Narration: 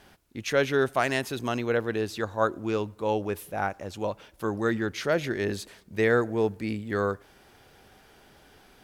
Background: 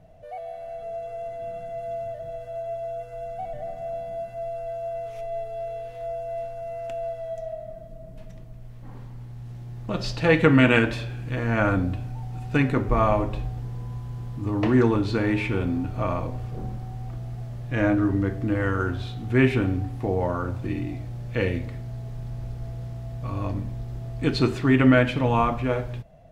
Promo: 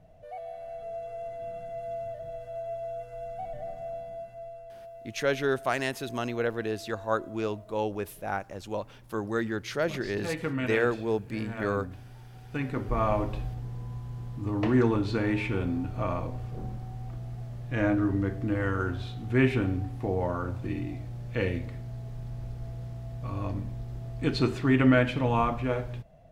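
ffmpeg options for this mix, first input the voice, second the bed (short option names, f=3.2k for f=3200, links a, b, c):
-filter_complex "[0:a]adelay=4700,volume=-3dB[a];[1:a]volume=6.5dB,afade=t=out:st=3.72:d=1:silence=0.298538,afade=t=in:st=12.41:d=0.84:silence=0.298538[b];[a][b]amix=inputs=2:normalize=0"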